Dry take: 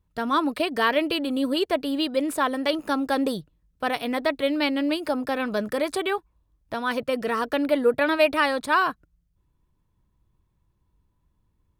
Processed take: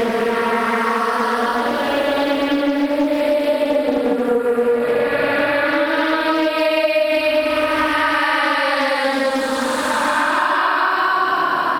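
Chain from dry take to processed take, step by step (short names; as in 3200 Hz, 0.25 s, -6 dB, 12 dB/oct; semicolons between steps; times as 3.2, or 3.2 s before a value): spectral swells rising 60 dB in 0.34 s; outdoor echo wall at 40 m, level -21 dB; Paulstretch 7×, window 0.25 s, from 7.22; compressor 6:1, threshold -23 dBFS, peak gain reduction 12 dB; Doppler distortion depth 0.28 ms; gain +9 dB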